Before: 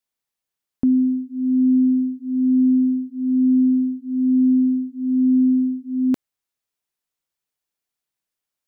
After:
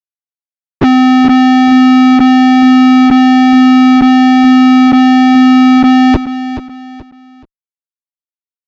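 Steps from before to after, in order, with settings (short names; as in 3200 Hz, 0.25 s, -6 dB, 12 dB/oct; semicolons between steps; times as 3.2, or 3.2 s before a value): bin magnitudes rounded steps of 15 dB; HPF 42 Hz 24 dB/oct; bell 110 Hz +5.5 dB 1 oct; in parallel at +2 dB: limiter -19.5 dBFS, peak gain reduction 9 dB; on the sum: sample leveller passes 3; envelope flanger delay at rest 2.9 ms, full sweep at -7.5 dBFS; fuzz box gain 43 dB, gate -51 dBFS; air absorption 200 m; on a send: feedback echo 0.428 s, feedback 33%, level -12 dB; on the sum: downsampling 16000 Hz; gain +8 dB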